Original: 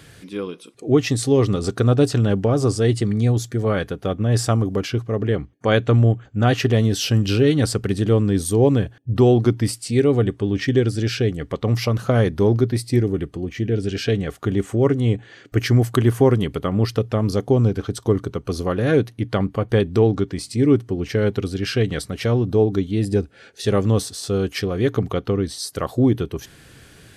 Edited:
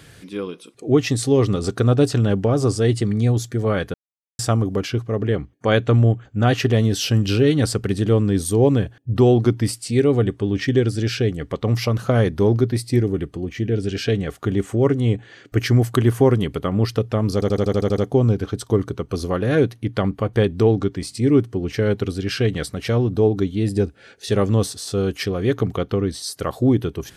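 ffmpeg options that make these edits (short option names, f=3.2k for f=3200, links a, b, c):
-filter_complex "[0:a]asplit=11[a][b][c][d][e][f][g][h][i][j][k];[a]atrim=end=3.94,asetpts=PTS-STARTPTS,afade=t=out:st=3.936:d=0.004:c=hsin[l];[b]atrim=start=3.94:end=4.39,asetpts=PTS-STARTPTS,volume=0[m];[c]atrim=start=4.39:end=17.422,asetpts=PTS-STARTPTS,afade=t=in:d=0.004:c=hsin[n];[d]atrim=start=17.338:end=17.422[o];[e]atrim=start=17.338:end=17.422[p];[f]atrim=start=17.338:end=17.422[q];[g]atrim=start=17.338:end=17.422[r];[h]atrim=start=17.338:end=17.422[s];[i]atrim=start=17.338:end=17.422[t];[j]atrim=start=17.338:end=17.422[u];[k]atrim=start=17.338[v];[l][m][n]concat=n=3:v=0:a=1[w];[w][o]acrossfade=d=0.004:c1=hsin:c2=hsin[x];[x][p]acrossfade=d=0.004:c1=hsin:c2=hsin[y];[y][q]acrossfade=d=0.004:c1=hsin:c2=hsin[z];[z][r]acrossfade=d=0.004:c1=hsin:c2=hsin[aa];[aa][s]acrossfade=d=0.004:c1=hsin:c2=hsin[ab];[ab][t]acrossfade=d=0.004:c1=hsin:c2=hsin[ac];[ac][u]acrossfade=d=0.004:c1=hsin:c2=hsin[ad];[ad][v]acrossfade=d=0.004:c1=hsin:c2=hsin"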